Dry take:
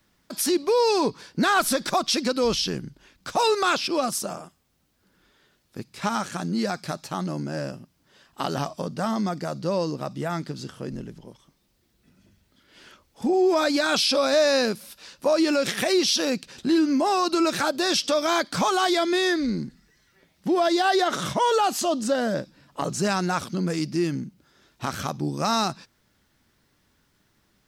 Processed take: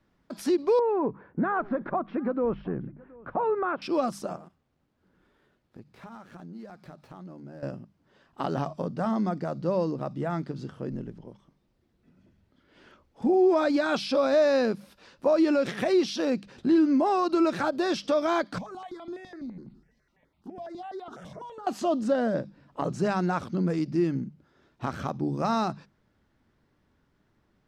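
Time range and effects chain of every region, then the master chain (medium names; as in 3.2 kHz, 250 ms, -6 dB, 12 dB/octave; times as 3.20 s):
0.79–3.82 s: low-pass 1.8 kHz 24 dB/octave + compression 1.5:1, threshold -26 dBFS + delay 721 ms -23.5 dB
4.36–7.63 s: dead-time distortion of 0.079 ms + compression 4:1, threshold -42 dBFS
18.58–21.67 s: feedback delay 69 ms, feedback 54%, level -22 dB + compression 8:1, threshold -33 dBFS + stepped phaser 12 Hz 360–1700 Hz
whole clip: low-pass 1 kHz 6 dB/octave; hum notches 50/100/150/200 Hz; endings held to a fixed fall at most 530 dB/s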